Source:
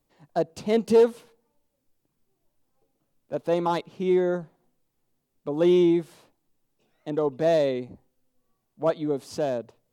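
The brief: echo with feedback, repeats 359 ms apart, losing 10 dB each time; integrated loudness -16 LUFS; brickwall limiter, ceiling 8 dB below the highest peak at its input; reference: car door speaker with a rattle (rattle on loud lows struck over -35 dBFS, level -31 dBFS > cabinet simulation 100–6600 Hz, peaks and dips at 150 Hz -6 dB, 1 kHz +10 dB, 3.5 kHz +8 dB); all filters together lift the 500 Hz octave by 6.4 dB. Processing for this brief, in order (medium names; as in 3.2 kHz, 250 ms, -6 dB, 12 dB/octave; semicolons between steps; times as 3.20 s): peaking EQ 500 Hz +7.5 dB; peak limiter -11 dBFS; feedback delay 359 ms, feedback 32%, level -10 dB; rattle on loud lows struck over -35 dBFS, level -31 dBFS; cabinet simulation 100–6600 Hz, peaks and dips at 150 Hz -6 dB, 1 kHz +10 dB, 3.5 kHz +8 dB; trim +6 dB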